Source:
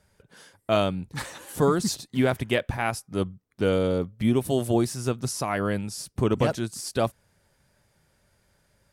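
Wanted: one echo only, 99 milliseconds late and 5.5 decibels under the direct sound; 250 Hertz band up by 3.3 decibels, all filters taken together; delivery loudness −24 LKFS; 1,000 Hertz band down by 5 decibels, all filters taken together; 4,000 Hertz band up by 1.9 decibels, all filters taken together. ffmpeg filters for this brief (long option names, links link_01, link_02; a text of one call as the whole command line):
ffmpeg -i in.wav -af "equalizer=frequency=250:width_type=o:gain=4.5,equalizer=frequency=1000:width_type=o:gain=-8,equalizer=frequency=4000:width_type=o:gain=3,aecho=1:1:99:0.531,volume=0.5dB" out.wav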